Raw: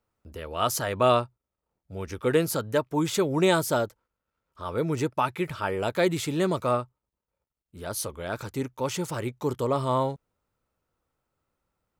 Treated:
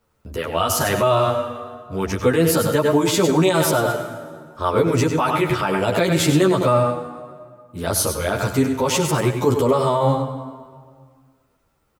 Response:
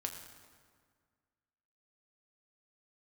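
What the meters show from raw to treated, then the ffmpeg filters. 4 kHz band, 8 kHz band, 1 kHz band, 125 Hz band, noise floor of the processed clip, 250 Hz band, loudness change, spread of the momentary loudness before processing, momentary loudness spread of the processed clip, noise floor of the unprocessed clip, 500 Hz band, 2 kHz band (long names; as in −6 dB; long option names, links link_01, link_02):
+8.5 dB, +10.0 dB, +7.5 dB, +10.0 dB, −65 dBFS, +9.0 dB, +8.0 dB, 15 LU, 14 LU, below −85 dBFS, +8.0 dB, +8.0 dB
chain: -filter_complex "[0:a]asplit=2[link_01][link_02];[1:a]atrim=start_sample=2205,adelay=97[link_03];[link_02][link_03]afir=irnorm=-1:irlink=0,volume=-7.5dB[link_04];[link_01][link_04]amix=inputs=2:normalize=0,alimiter=level_in=20.5dB:limit=-1dB:release=50:level=0:latency=1,asplit=2[link_05][link_06];[link_06]adelay=10.6,afreqshift=-1.1[link_07];[link_05][link_07]amix=inputs=2:normalize=1,volume=-5dB"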